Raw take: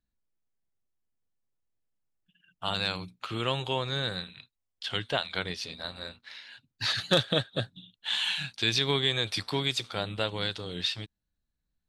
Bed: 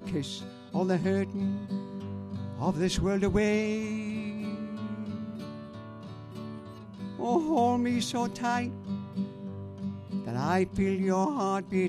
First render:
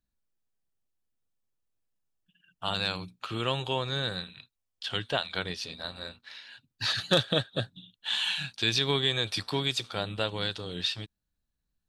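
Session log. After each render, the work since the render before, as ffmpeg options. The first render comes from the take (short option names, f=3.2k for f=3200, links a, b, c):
-af "bandreject=f=2.1k:w=12"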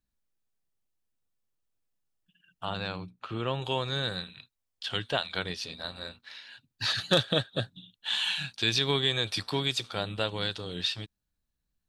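-filter_complex "[0:a]asettb=1/sr,asplit=3[a][b][c];[a]atrim=end=2.654[d];[b]atrim=start=2.65:end=3.62,asetpts=PTS-STARTPTS,afade=t=in:d=0.004:c=qsin,afade=t=out:st=0.966:d=0.004:c=qsin,lowpass=f=1.5k:p=1[e];[c]atrim=start=3.616[f];[d][e]acrossfade=d=0.004:c1=hsin:c2=qsin[g];[g][f]acrossfade=d=0.004:c1=qsin:c2=hsin"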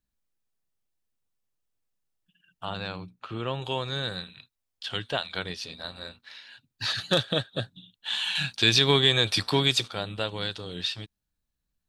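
-filter_complex "[0:a]asettb=1/sr,asplit=3[a][b][c];[a]atrim=end=8.354[d];[b]atrim=start=8.35:end=9.88,asetpts=PTS-STARTPTS,afade=t=in:d=0.004:c=qsin,afade=t=out:st=1.526:d=0.004:c=qsin,acontrast=61[e];[c]atrim=start=9.876[f];[d][e]acrossfade=d=0.004:c1=hsin:c2=qsin[g];[g][f]acrossfade=d=0.004:c1=qsin:c2=hsin"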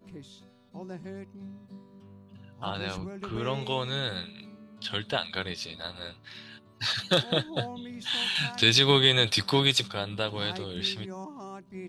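-filter_complex "[1:a]volume=-13.5dB[a];[0:a][a]amix=inputs=2:normalize=0"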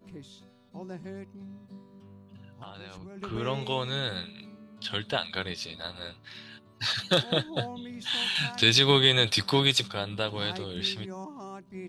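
-filter_complex "[0:a]asplit=3[a][b][c];[a]afade=t=out:st=1.25:d=0.02[d];[b]acompressor=threshold=-40dB:ratio=6:attack=3.2:release=140:knee=1:detection=peak,afade=t=in:st=1.25:d=0.02,afade=t=out:st=3.16:d=0.02[e];[c]afade=t=in:st=3.16:d=0.02[f];[d][e][f]amix=inputs=3:normalize=0"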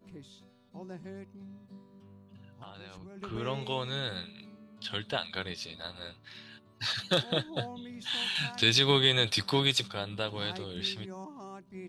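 -af "volume=-3.5dB"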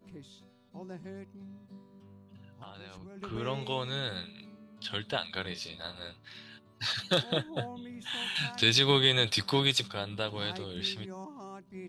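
-filter_complex "[0:a]asettb=1/sr,asplit=3[a][b][c];[a]atrim=end=5.404[d];[b]atrim=start=5.4:end=5.95,asetpts=PTS-STARTPTS,afade=t=in:d=0.004:c=qsin,afade=t=out:st=0.546:d=0.004:c=qsin,asplit=2[e][f];[f]adelay=39,volume=-11dB[g];[e][g]amix=inputs=2:normalize=0,atrim=end_sample=24255[h];[c]atrim=start=5.946[i];[d][h]acrossfade=d=0.004:c1=hsin:c2=qsin[j];[j][i]acrossfade=d=0.004:c1=qsin:c2=hsin,asettb=1/sr,asplit=3[k][l][m];[k]atrim=end=7.374[n];[l]atrim=start=7.37:end=8.36,asetpts=PTS-STARTPTS,afade=t=in:d=0.004:c=qsin,afade=t=out:st=0.986:d=0.004:c=qsin,equalizer=f=4.6k:w=2.5:g=-12.5[o];[m]atrim=start=8.356[p];[n][o]acrossfade=d=0.004:c1=hsin:c2=qsin[q];[q][p]acrossfade=d=0.004:c1=qsin:c2=hsin"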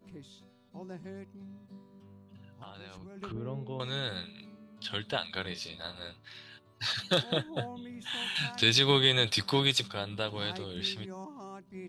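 -filter_complex "[0:a]asettb=1/sr,asplit=3[a][b][c];[a]atrim=end=3.324[d];[b]atrim=start=3.32:end=3.8,asetpts=PTS-STARTPTS,afade=t=in:d=0.004:c=qsin,afade=t=out:st=0.476:d=0.004:c=qsin,bandpass=f=140:t=q:w=0.53[e];[c]atrim=start=3.796[f];[d][e]acrossfade=d=0.004:c1=hsin:c2=qsin[g];[g][f]acrossfade=d=0.004:c1=qsin:c2=hsin,asettb=1/sr,asplit=3[h][i][j];[h]atrim=end=6.214[k];[i]atrim=start=6.21:end=6.86,asetpts=PTS-STARTPTS,afade=t=in:d=0.004:c=qsin,afade=t=out:st=0.646:d=0.004:c=qsin,equalizer=f=210:w=3.6:g=-11[l];[j]atrim=start=6.856[m];[k][l]acrossfade=d=0.004:c1=hsin:c2=qsin[n];[n][m]acrossfade=d=0.004:c1=qsin:c2=hsin"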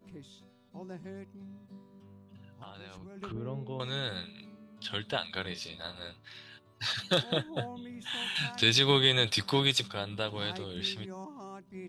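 -af "bandreject=f=4.3k:w=22"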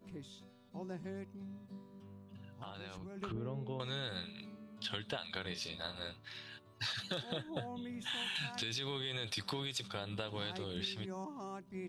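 -af "alimiter=limit=-21dB:level=0:latency=1:release=72,acompressor=threshold=-36dB:ratio=6"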